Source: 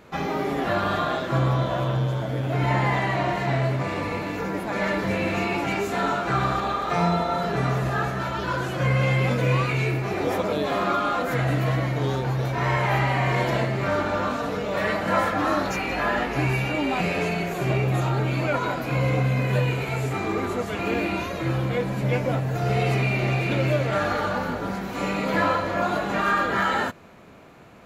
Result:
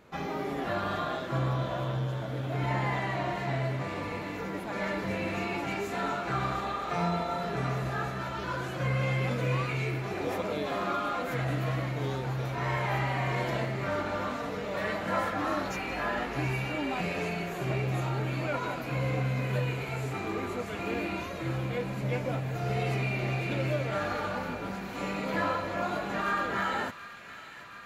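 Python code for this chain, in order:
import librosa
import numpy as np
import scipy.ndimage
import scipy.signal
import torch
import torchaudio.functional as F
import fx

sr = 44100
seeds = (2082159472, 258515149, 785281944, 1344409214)

y = fx.echo_wet_highpass(x, sr, ms=729, feedback_pct=79, hz=1600.0, wet_db=-12)
y = F.gain(torch.from_numpy(y), -7.5).numpy()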